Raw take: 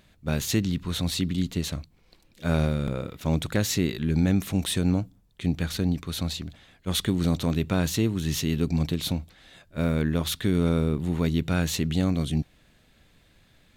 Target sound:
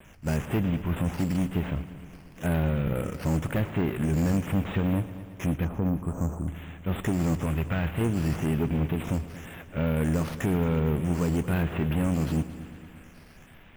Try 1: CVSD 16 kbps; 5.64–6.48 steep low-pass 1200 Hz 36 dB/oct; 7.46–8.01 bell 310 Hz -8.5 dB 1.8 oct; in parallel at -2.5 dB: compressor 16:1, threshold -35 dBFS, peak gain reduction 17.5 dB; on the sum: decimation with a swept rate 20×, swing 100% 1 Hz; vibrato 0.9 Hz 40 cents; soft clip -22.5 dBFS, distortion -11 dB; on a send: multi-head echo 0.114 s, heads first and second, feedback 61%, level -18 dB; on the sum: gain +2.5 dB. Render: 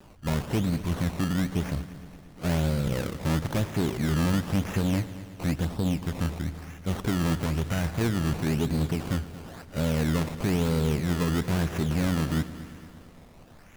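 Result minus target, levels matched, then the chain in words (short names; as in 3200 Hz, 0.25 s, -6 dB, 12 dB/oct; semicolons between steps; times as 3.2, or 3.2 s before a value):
decimation with a swept rate: distortion +13 dB
CVSD 16 kbps; 5.64–6.48 steep low-pass 1200 Hz 36 dB/oct; 7.46–8.01 bell 310 Hz -8.5 dB 1.8 oct; in parallel at -2.5 dB: compressor 16:1, threshold -35 dBFS, peak gain reduction 17.5 dB; on the sum: decimation with a swept rate 4×, swing 100% 1 Hz; vibrato 0.9 Hz 40 cents; soft clip -22.5 dBFS, distortion -11 dB; on a send: multi-head echo 0.114 s, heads first and second, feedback 61%, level -18 dB; on the sum: gain +2.5 dB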